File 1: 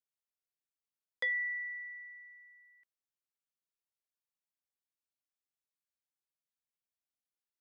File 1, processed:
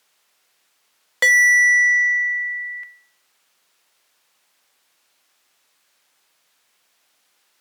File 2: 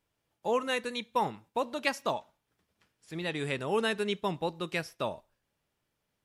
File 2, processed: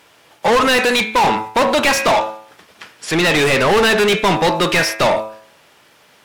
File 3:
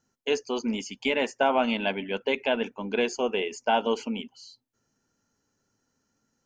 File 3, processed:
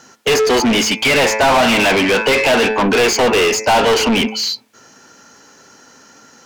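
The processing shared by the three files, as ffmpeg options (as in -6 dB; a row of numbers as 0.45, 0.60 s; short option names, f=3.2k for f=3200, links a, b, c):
-filter_complex "[0:a]bandreject=f=108.7:t=h:w=4,bandreject=f=217.4:t=h:w=4,bandreject=f=326.1:t=h:w=4,bandreject=f=434.8:t=h:w=4,bandreject=f=543.5:t=h:w=4,bandreject=f=652.2:t=h:w=4,bandreject=f=760.9:t=h:w=4,bandreject=f=869.6:t=h:w=4,bandreject=f=978.3:t=h:w=4,bandreject=f=1.087k:t=h:w=4,bandreject=f=1.1957k:t=h:w=4,bandreject=f=1.3044k:t=h:w=4,bandreject=f=1.4131k:t=h:w=4,bandreject=f=1.5218k:t=h:w=4,bandreject=f=1.6305k:t=h:w=4,bandreject=f=1.7392k:t=h:w=4,bandreject=f=1.8479k:t=h:w=4,bandreject=f=1.9566k:t=h:w=4,bandreject=f=2.0653k:t=h:w=4,bandreject=f=2.174k:t=h:w=4,bandreject=f=2.2827k:t=h:w=4,bandreject=f=2.3914k:t=h:w=4,bandreject=f=2.5001k:t=h:w=4,bandreject=f=2.6088k:t=h:w=4,asplit=2[a][b];[b]highpass=f=720:p=1,volume=36dB,asoftclip=type=tanh:threshold=-11.5dB[c];[a][c]amix=inputs=2:normalize=0,lowpass=f=4.3k:p=1,volume=-6dB,volume=5.5dB" -ar 44100 -c:a libmp3lame -b:a 320k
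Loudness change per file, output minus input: +21.0, +18.0, +14.0 LU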